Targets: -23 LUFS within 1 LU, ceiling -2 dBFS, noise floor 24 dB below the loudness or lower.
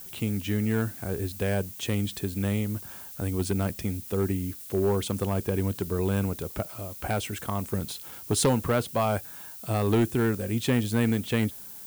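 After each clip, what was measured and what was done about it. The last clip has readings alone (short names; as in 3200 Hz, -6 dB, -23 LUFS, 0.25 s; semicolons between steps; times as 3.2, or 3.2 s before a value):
clipped 0.6%; flat tops at -17.0 dBFS; noise floor -43 dBFS; noise floor target -53 dBFS; loudness -28.5 LUFS; peak -17.0 dBFS; loudness target -23.0 LUFS
-> clip repair -17 dBFS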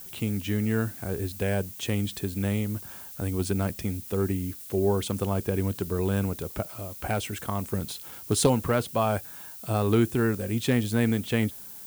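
clipped 0.0%; noise floor -43 dBFS; noise floor target -52 dBFS
-> denoiser 9 dB, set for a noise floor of -43 dBFS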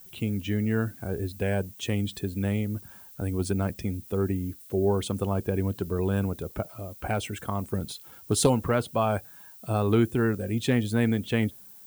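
noise floor -49 dBFS; noise floor target -52 dBFS
-> denoiser 6 dB, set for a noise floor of -49 dBFS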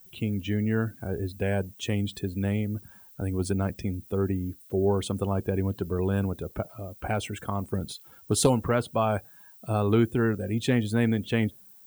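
noise floor -53 dBFS; loudness -28.5 LUFS; peak -8.5 dBFS; loudness target -23.0 LUFS
-> gain +5.5 dB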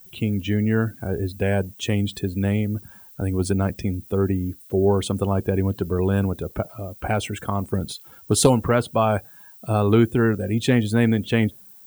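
loudness -23.0 LUFS; peak -3.0 dBFS; noise floor -47 dBFS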